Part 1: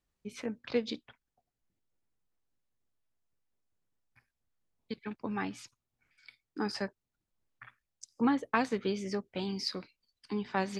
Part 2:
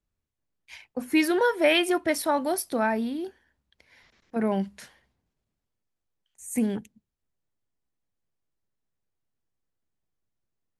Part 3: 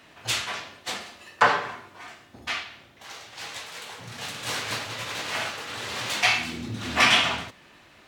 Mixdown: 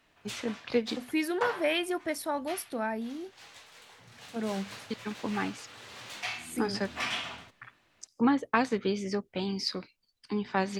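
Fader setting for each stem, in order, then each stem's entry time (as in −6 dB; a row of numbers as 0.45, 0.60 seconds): +3.0, −7.5, −14.5 decibels; 0.00, 0.00, 0.00 seconds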